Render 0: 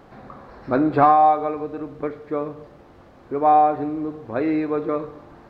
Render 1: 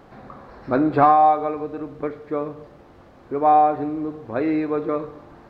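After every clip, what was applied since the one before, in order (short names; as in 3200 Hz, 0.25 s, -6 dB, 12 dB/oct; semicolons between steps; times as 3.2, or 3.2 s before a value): nothing audible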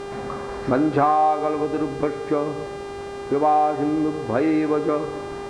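compressor 3:1, threshold -28 dBFS, peak gain reduction 13 dB; buzz 400 Hz, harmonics 25, -42 dBFS -8 dB/oct; gain +8.5 dB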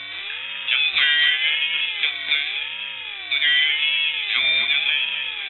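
feedback echo 0.253 s, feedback 58%, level -7.5 dB; inverted band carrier 3300 Hz; ring modulator with a swept carrier 480 Hz, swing 30%, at 0.88 Hz; gain +2 dB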